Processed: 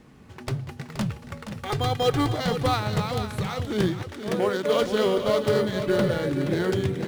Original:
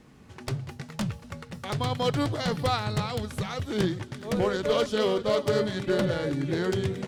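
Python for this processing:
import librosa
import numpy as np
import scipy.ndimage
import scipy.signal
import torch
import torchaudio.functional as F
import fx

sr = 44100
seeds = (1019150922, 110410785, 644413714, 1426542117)

p1 = fx.comb(x, sr, ms=2.5, depth=0.74, at=(1.66, 2.31))
p2 = fx.highpass(p1, sr, hz=fx.line((4.02, 310.0), (4.8, 140.0)), slope=24, at=(4.02, 4.8), fade=0.02)
p3 = p2 + 10.0 ** (-9.5 / 20.0) * np.pad(p2, (int(474 * sr / 1000.0), 0))[:len(p2)]
p4 = fx.sample_hold(p3, sr, seeds[0], rate_hz=10000.0, jitter_pct=0)
y = p3 + (p4 * 10.0 ** (-10.0 / 20.0))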